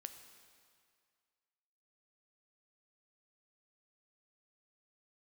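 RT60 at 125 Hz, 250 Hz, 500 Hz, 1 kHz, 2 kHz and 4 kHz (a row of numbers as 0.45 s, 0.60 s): 1.9 s, 1.9 s, 2.0 s, 2.2 s, 2.0 s, 1.9 s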